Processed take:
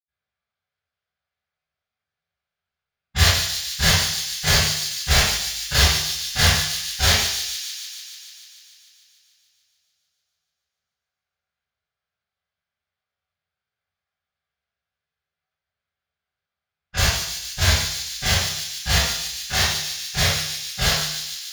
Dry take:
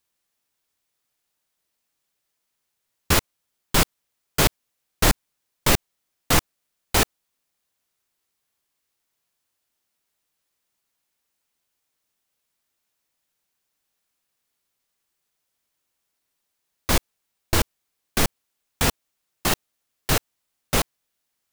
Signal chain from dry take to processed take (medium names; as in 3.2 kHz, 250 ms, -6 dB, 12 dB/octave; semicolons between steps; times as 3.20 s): every event in the spectrogram widened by 60 ms; level-controlled noise filter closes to 1.2 kHz, open at -16.5 dBFS; amplifier tone stack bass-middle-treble 10-0-10; formant shift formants +5 st; feedback echo behind a high-pass 147 ms, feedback 74%, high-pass 3.8 kHz, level -4 dB; reverberation RT60 0.75 s, pre-delay 76 ms; trim -3.5 dB